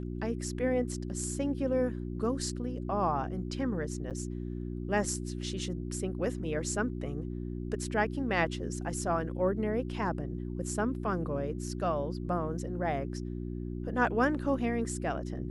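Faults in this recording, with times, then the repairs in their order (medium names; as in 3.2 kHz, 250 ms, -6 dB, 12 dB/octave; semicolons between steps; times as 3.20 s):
hum 60 Hz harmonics 6 -37 dBFS
4.10–4.11 s: dropout 7.7 ms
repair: de-hum 60 Hz, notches 6; interpolate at 4.10 s, 7.7 ms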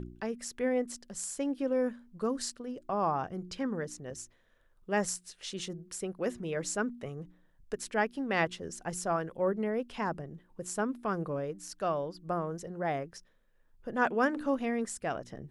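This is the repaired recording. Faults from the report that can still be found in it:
nothing left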